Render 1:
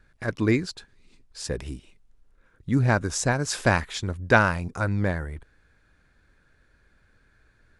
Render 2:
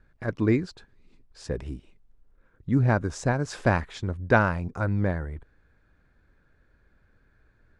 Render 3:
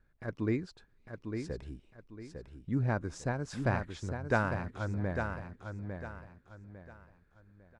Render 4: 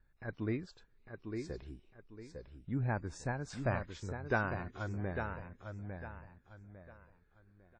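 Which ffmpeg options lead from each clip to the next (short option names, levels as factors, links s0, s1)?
-af "lowpass=9000,highshelf=f=2100:g=-11.5"
-af "aecho=1:1:852|1704|2556|3408:0.473|0.151|0.0485|0.0155,volume=0.355"
-af "flanger=delay=1.1:depth=1.7:regen=65:speed=0.32:shape=sinusoidal,volume=1.12" -ar 48000 -c:a wmav2 -b:a 32k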